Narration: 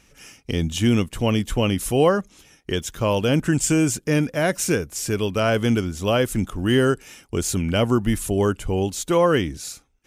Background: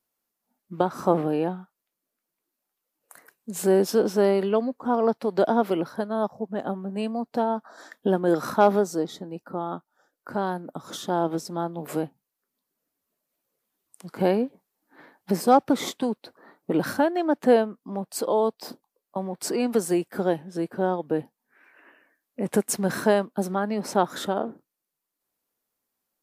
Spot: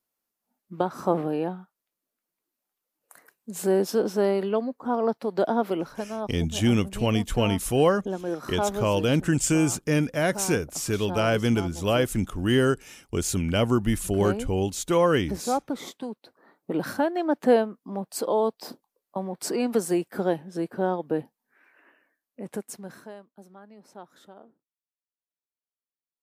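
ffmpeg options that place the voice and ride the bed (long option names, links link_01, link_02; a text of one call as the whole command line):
ffmpeg -i stem1.wav -i stem2.wav -filter_complex "[0:a]adelay=5800,volume=-3dB[link_01];[1:a]volume=5dB,afade=type=out:start_time=5.8:duration=0.56:silence=0.501187,afade=type=in:start_time=16.13:duration=1.24:silence=0.421697,afade=type=out:start_time=21.11:duration=1.98:silence=0.0841395[link_02];[link_01][link_02]amix=inputs=2:normalize=0" out.wav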